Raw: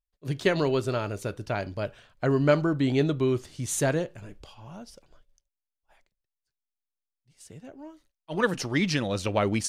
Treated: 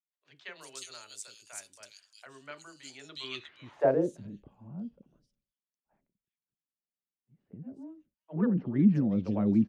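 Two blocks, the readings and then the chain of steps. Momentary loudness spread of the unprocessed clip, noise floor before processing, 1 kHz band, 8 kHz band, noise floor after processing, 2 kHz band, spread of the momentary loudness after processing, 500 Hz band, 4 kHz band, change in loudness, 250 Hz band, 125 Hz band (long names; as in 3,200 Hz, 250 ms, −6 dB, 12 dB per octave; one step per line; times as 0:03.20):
22 LU, below −85 dBFS, −9.5 dB, −11.5 dB, below −85 dBFS, −14.5 dB, 22 LU, −7.5 dB, −9.0 dB, −2.5 dB, −0.5 dB, −6.0 dB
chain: three-band delay without the direct sound mids, lows, highs 30/360 ms, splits 470/3,000 Hz
band-pass filter sweep 7,800 Hz → 210 Hz, 0:02.98–0:04.21
level +7 dB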